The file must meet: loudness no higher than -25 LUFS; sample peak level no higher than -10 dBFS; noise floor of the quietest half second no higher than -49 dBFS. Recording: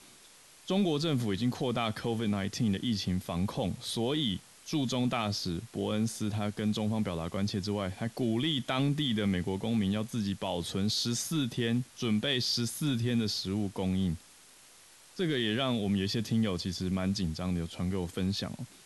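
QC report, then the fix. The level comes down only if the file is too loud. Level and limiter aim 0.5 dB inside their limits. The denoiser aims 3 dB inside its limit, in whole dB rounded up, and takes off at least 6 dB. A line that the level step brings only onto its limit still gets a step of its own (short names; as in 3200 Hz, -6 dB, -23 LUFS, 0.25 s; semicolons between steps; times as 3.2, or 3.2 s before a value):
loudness -31.5 LUFS: OK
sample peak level -18.0 dBFS: OK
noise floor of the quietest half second -57 dBFS: OK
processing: none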